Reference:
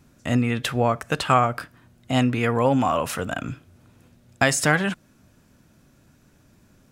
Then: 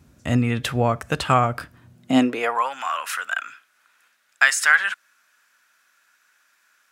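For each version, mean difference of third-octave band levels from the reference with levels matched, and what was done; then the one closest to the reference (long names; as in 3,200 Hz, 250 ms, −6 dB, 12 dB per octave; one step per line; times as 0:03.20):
6.0 dB: high-pass filter sweep 64 Hz → 1,500 Hz, 0:01.75–0:02.71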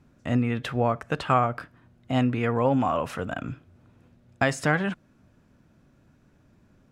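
3.0 dB: low-pass filter 2,000 Hz 6 dB per octave
level −2.5 dB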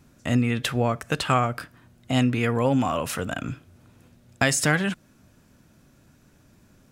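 1.5 dB: dynamic equaliser 890 Hz, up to −5 dB, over −31 dBFS, Q 0.77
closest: third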